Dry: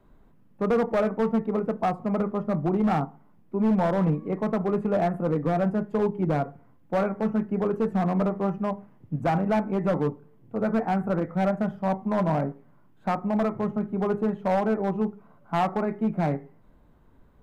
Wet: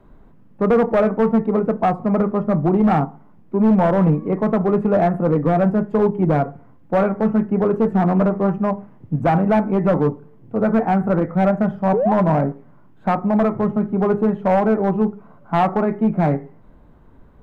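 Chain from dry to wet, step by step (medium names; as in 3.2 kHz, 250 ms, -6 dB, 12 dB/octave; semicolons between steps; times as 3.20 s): 11.93–12.14 s: painted sound rise 380–920 Hz -26 dBFS; in parallel at -9 dB: saturation -27 dBFS, distortion -10 dB; on the sum: treble shelf 3.4 kHz -9.5 dB; 7.63–8.56 s: loudspeaker Doppler distortion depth 0.2 ms; trim +6.5 dB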